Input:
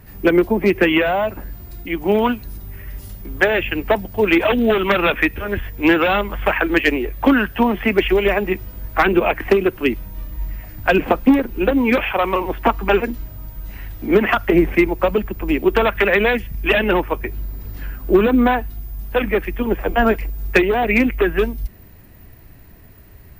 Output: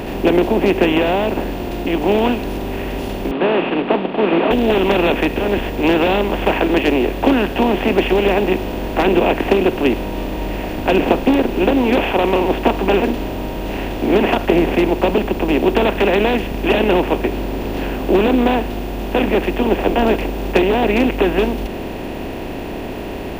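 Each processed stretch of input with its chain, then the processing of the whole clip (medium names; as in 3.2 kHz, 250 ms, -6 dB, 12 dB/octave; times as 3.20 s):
3.31–4.51 s: CVSD coder 16 kbps + elliptic high-pass 160 Hz + peaking EQ 1.2 kHz +13 dB 0.38 oct
whole clip: spectral levelling over time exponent 0.4; high-order bell 1.6 kHz -9 dB 1.2 oct; trim -4.5 dB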